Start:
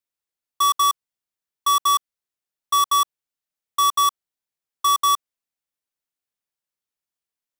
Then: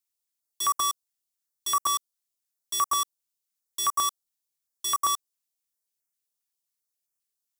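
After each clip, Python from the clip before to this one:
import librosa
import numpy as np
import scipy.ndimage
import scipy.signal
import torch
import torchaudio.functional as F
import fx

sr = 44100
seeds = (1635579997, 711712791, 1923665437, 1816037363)

y = fx.bass_treble(x, sr, bass_db=-3, treble_db=10)
y = np.clip(y, -10.0 ** (-16.0 / 20.0), 10.0 ** (-16.0 / 20.0))
y = fx.filter_held_notch(y, sr, hz=7.5, low_hz=480.0, high_hz=3700.0)
y = y * 10.0 ** (-3.5 / 20.0)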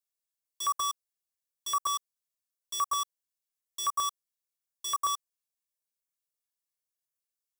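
y = x + 0.56 * np.pad(x, (int(1.8 * sr / 1000.0), 0))[:len(x)]
y = y * 10.0 ** (-7.5 / 20.0)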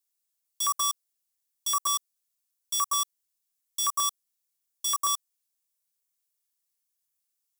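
y = fx.high_shelf(x, sr, hz=3300.0, db=10.5)
y = y * 10.0 ** (-1.0 / 20.0)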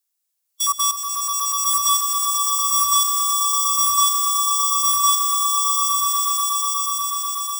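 y = scipy.signal.sosfilt(scipy.signal.butter(4, 550.0, 'highpass', fs=sr, output='sos'), x)
y = fx.hpss(y, sr, part='percussive', gain_db=-10)
y = fx.echo_swell(y, sr, ms=122, loudest=8, wet_db=-5.0)
y = y * 10.0 ** (7.5 / 20.0)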